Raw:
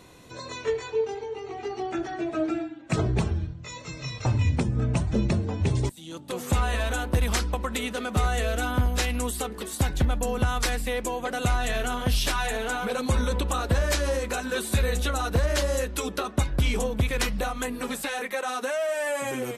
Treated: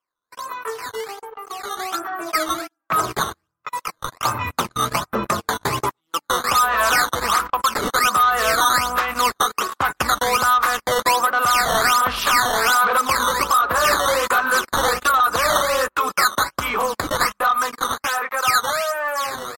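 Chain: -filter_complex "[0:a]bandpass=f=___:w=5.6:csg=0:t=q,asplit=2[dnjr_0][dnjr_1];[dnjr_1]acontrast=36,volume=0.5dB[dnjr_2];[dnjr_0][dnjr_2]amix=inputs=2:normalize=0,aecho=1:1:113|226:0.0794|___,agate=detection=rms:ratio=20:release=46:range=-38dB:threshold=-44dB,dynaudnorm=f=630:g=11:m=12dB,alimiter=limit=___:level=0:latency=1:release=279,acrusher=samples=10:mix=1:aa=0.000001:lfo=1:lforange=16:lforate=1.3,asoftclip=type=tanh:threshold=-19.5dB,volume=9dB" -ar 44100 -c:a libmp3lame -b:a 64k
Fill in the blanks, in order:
1200, 0.0135, -13.5dB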